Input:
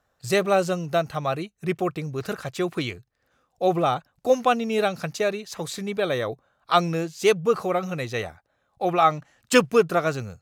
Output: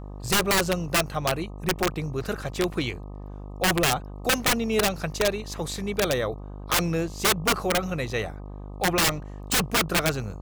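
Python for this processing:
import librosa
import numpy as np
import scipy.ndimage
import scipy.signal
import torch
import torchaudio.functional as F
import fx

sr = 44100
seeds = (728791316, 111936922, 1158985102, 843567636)

y = (np.mod(10.0 ** (15.5 / 20.0) * x + 1.0, 2.0) - 1.0) / 10.0 ** (15.5 / 20.0)
y = fx.dmg_buzz(y, sr, base_hz=50.0, harmonics=25, level_db=-38.0, tilt_db=-6, odd_only=False)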